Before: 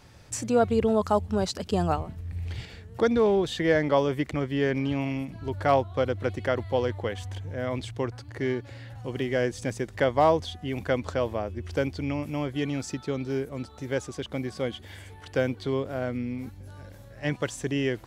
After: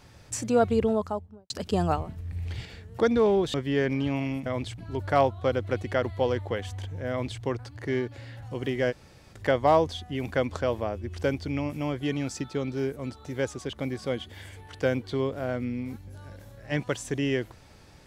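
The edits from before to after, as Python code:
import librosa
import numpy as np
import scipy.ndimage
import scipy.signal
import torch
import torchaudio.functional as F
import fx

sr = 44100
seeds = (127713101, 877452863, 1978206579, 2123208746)

y = fx.studio_fade_out(x, sr, start_s=0.7, length_s=0.8)
y = fx.edit(y, sr, fx.cut(start_s=3.54, length_s=0.85),
    fx.duplicate(start_s=7.63, length_s=0.32, to_s=5.31),
    fx.room_tone_fill(start_s=9.44, length_s=0.43, crossfade_s=0.04), tone=tone)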